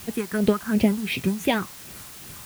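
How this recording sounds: phasing stages 4, 2.8 Hz, lowest notch 490–1300 Hz; tremolo triangle 2.7 Hz, depth 80%; a quantiser's noise floor 8-bit, dither triangular

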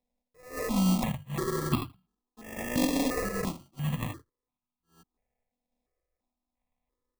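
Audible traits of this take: a buzz of ramps at a fixed pitch in blocks of 16 samples; random-step tremolo; aliases and images of a low sample rate 1.5 kHz, jitter 0%; notches that jump at a steady rate 2.9 Hz 360–1800 Hz

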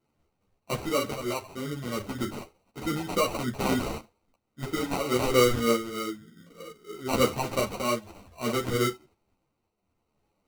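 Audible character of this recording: phasing stages 2, 3.2 Hz, lowest notch 470–2100 Hz; aliases and images of a low sample rate 1.7 kHz, jitter 0%; tremolo triangle 0.59 Hz, depth 65%; a shimmering, thickened sound

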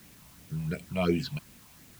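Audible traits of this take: phasing stages 6, 2.8 Hz, lowest notch 380–1300 Hz; a quantiser's noise floor 10-bit, dither triangular

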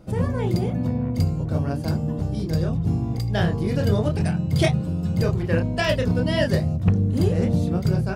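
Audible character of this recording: noise floor -28 dBFS; spectral tilt -7.0 dB/octave

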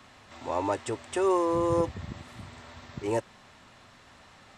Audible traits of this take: noise floor -55 dBFS; spectral tilt -6.0 dB/octave

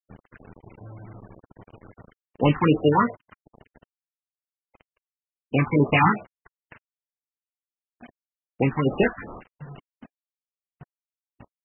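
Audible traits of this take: aliases and images of a low sample rate 3.3 kHz, jitter 20%; phasing stages 4, 2.6 Hz, lowest notch 490–2300 Hz; a quantiser's noise floor 8-bit, dither none; MP3

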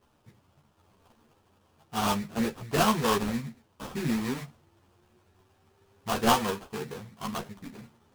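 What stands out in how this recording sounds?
aliases and images of a low sample rate 2.1 kHz, jitter 20%; a shimmering, thickened sound

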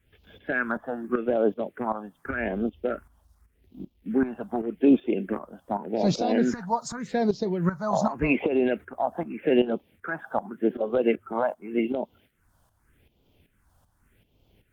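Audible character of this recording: a quantiser's noise floor 12-bit, dither none; tremolo saw up 2.6 Hz, depth 70%; phasing stages 4, 0.85 Hz, lowest notch 370–1700 Hz; Opus

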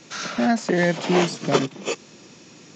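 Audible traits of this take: noise floor -48 dBFS; spectral tilt -5.0 dB/octave

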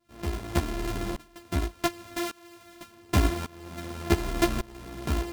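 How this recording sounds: a buzz of ramps at a fixed pitch in blocks of 128 samples; tremolo saw up 0.87 Hz, depth 95%; a shimmering, thickened sound

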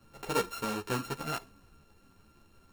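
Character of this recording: a buzz of ramps at a fixed pitch in blocks of 32 samples; a shimmering, thickened sound

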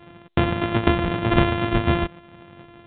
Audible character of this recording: a buzz of ramps at a fixed pitch in blocks of 128 samples; µ-law

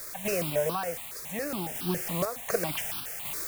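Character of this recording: a quantiser's noise floor 6-bit, dither triangular; random-step tremolo 4 Hz; notches that jump at a steady rate 7.2 Hz 800–2000 Hz

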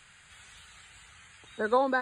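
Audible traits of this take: noise floor -57 dBFS; spectral tilt -2.0 dB/octave

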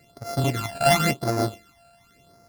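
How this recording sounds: a buzz of ramps at a fixed pitch in blocks of 64 samples; phasing stages 12, 0.93 Hz, lowest notch 340–3100 Hz

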